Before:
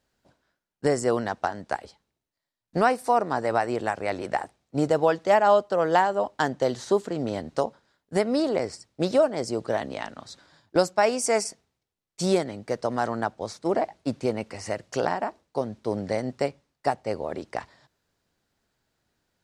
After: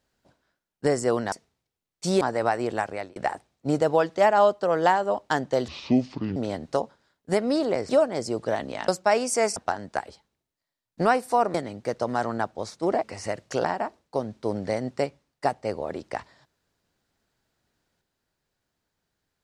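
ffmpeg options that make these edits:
-filter_complex "[0:a]asplit=11[a][b][c][d][e][f][g][h][i][j][k];[a]atrim=end=1.322[l];[b]atrim=start=11.478:end=12.372[m];[c]atrim=start=3.298:end=4.25,asetpts=PTS-STARTPTS,afade=t=out:st=0.652:d=0.3[n];[d]atrim=start=4.25:end=6.774,asetpts=PTS-STARTPTS,afade=t=in:d=0.004:c=hsin[o];[e]atrim=start=6.77:end=7.2,asetpts=PTS-STARTPTS,asetrate=27783,aresample=44100[p];[f]atrim=start=7.196:end=8.732[q];[g]atrim=start=9.108:end=10.102[r];[h]atrim=start=10.798:end=11.482[s];[i]atrim=start=1.318:end=3.302[t];[j]atrim=start=12.368:end=13.862[u];[k]atrim=start=14.448[v];[l][m]acrossfade=d=0.004:c1=hsin:c2=hsin[w];[n][o]concat=n=2:v=0:a=1[x];[w][x]acrossfade=d=0.004:c1=hsin:c2=hsin[y];[y][p]acrossfade=d=0.004:c1=hsin:c2=hsin[z];[z][q]acrossfade=d=0.004:c1=hsin:c2=hsin[aa];[aa][r]acrossfade=d=0.004:c1=hsin:c2=hsin[ab];[ab][s]acrossfade=d=0.004:c1=hsin:c2=hsin[ac];[ac][t]acrossfade=d=0.004:c1=hsin:c2=hsin[ad];[ad][u]acrossfade=d=0.004:c1=hsin:c2=hsin[ae];[ae][v]acrossfade=d=0.004:c1=hsin:c2=hsin"

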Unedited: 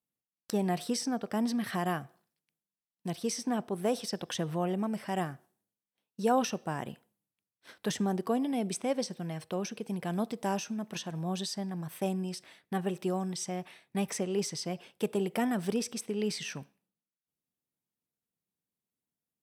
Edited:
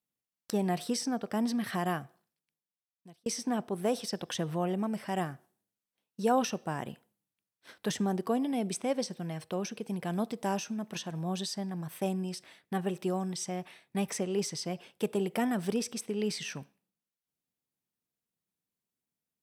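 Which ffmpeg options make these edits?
-filter_complex "[0:a]asplit=2[a][b];[a]atrim=end=3.26,asetpts=PTS-STARTPTS,afade=t=out:st=1.94:d=1.32[c];[b]atrim=start=3.26,asetpts=PTS-STARTPTS,afade=t=in:d=0.004:c=hsin[d];[c][d]concat=n=2:v=0:a=1"

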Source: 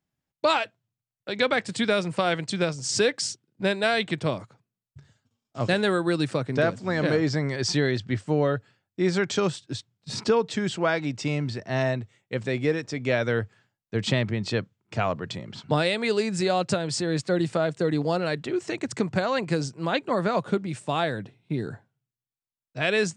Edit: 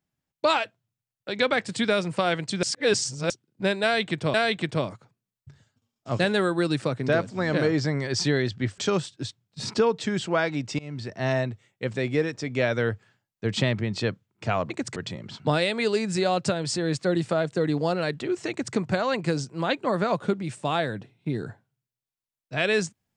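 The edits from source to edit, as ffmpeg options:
-filter_complex "[0:a]asplit=8[a][b][c][d][e][f][g][h];[a]atrim=end=2.632[i];[b]atrim=start=2.628:end=3.302,asetpts=PTS-STARTPTS,areverse[j];[c]atrim=start=3.298:end=4.342[k];[d]atrim=start=3.828:end=8.272[l];[e]atrim=start=9.278:end=11.29,asetpts=PTS-STARTPTS,afade=t=out:st=2.008:d=0.004:c=hsin:silence=0.0630957[m];[f]atrim=start=11.29:end=15.202,asetpts=PTS-STARTPTS,afade=t=in:d=0.33:silence=0.0630957[n];[g]atrim=start=18.738:end=19.002[o];[h]atrim=start=15.198[p];[i][j]acrossfade=d=0.004:c1=hsin:c2=hsin[q];[q][k]acrossfade=d=0.004:c1=hsin:c2=hsin[r];[r][l]acrossfade=d=0.004:c1=hsin:c2=hsin[s];[m][n]concat=n=2:v=0:a=1[t];[s][t]acrossfade=d=0.004:c1=hsin:c2=hsin[u];[u][o]acrossfade=d=0.004:c1=hsin:c2=hsin[v];[v][p]acrossfade=d=0.004:c1=hsin:c2=hsin"

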